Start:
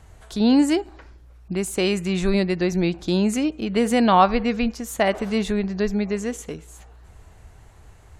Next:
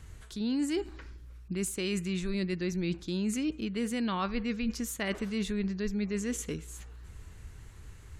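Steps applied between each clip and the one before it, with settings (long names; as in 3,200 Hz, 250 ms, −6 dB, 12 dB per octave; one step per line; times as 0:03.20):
parametric band 710 Hz −14 dB 0.91 octaves
reversed playback
downward compressor 6 to 1, threshold −29 dBFS, peak gain reduction 13 dB
reversed playback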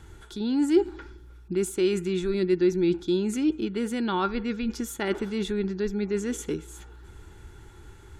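hollow resonant body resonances 360/850/1,400/3,400 Hz, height 14 dB, ringing for 35 ms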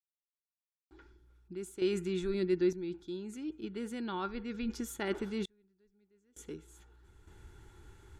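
sample-and-hold tremolo 1.1 Hz, depth 100%
level −7 dB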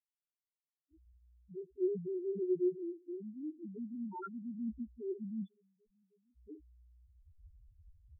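low-pass that shuts in the quiet parts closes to 400 Hz
spectral peaks only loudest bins 1
level +2.5 dB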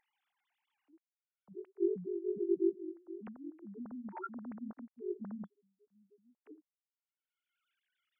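three sine waves on the formant tracks
upward compression, threshold −57 dBFS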